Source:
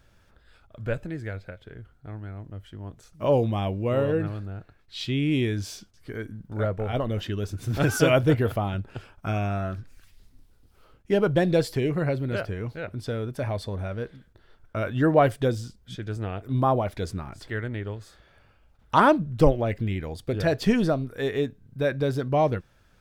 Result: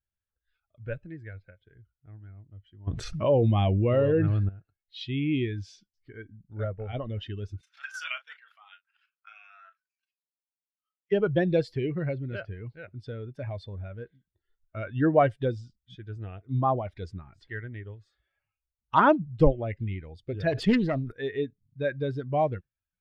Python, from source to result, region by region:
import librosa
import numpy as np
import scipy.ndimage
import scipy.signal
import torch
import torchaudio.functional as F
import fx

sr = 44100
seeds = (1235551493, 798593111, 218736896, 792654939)

y = fx.chain(x, sr, fx.peak_eq(hz=6900.0, db=-6.0, octaves=0.31),
    fx.env_flatten(amount_pct=70), at=(2.87, 4.49))
y = fx.chain(y, sr, fx.level_steps(step_db=10),
    fx.highpass(hz=1100.0, slope=24),
    fx.doubler(ms=36.0, db=-9.0), at=(7.61, 11.12))
y = fx.chain(y, sr, fx.self_delay(depth_ms=0.35),
    fx.sustainer(db_per_s=51.0), at=(20.52, 21.12))
y = fx.bin_expand(y, sr, power=1.5)
y = fx.noise_reduce_blind(y, sr, reduce_db=11)
y = scipy.signal.sosfilt(scipy.signal.butter(2, 3700.0, 'lowpass', fs=sr, output='sos'), y)